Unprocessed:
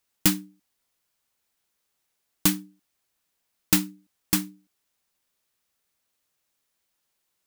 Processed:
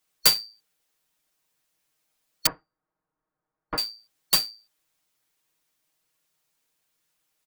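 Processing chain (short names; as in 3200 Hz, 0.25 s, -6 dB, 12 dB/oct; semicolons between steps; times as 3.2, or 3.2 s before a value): four-band scrambler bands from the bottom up 2341; 2.46–3.78 LPF 1400 Hz 24 dB/oct; comb 6.4 ms, depth 92%; gain -1 dB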